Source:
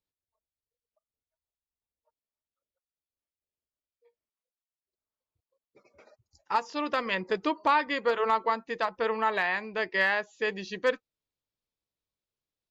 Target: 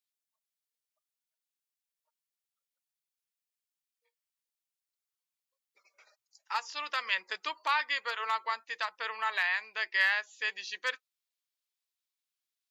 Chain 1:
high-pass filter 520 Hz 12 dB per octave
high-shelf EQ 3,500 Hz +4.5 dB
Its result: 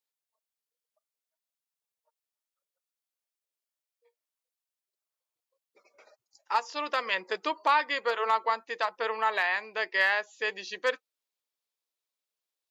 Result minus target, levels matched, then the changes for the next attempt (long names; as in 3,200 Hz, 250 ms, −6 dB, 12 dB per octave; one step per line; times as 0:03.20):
500 Hz band +11.0 dB
change: high-pass filter 1,400 Hz 12 dB per octave